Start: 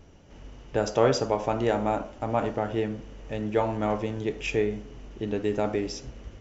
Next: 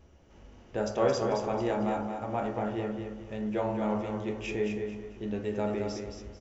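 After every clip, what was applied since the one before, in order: feedback echo 0.221 s, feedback 32%, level -6 dB; on a send at -2.5 dB: reverb RT60 0.65 s, pre-delay 7 ms; on the sum: gain -7.5 dB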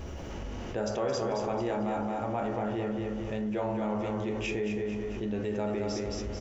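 fast leveller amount 70%; gain -6.5 dB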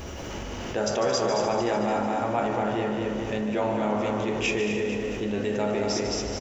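tilt +1.5 dB/oct; frequency-shifting echo 0.149 s, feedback 62%, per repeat +34 Hz, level -9.5 dB; gain +6.5 dB

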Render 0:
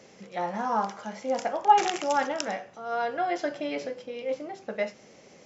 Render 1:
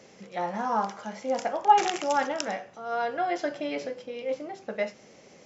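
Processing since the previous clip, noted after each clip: nothing audible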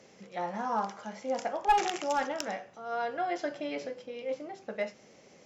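one-sided clip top -17 dBFS; gain -4 dB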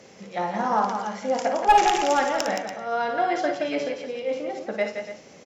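tapped delay 56/171/287 ms -8/-7/-12.5 dB; gain +7.5 dB

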